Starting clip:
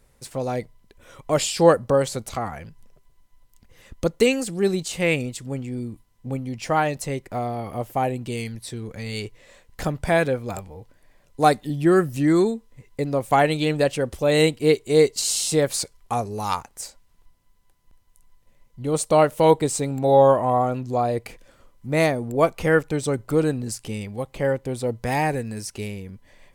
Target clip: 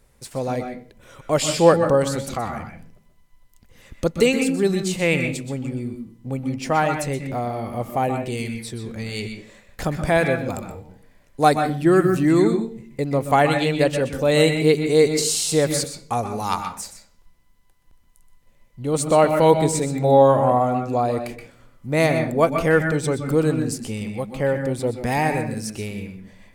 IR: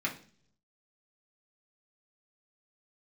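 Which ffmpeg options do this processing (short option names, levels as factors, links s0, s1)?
-filter_complex "[0:a]asplit=2[s0][s1];[1:a]atrim=start_sample=2205,adelay=124[s2];[s1][s2]afir=irnorm=-1:irlink=0,volume=0.282[s3];[s0][s3]amix=inputs=2:normalize=0,volume=1.12"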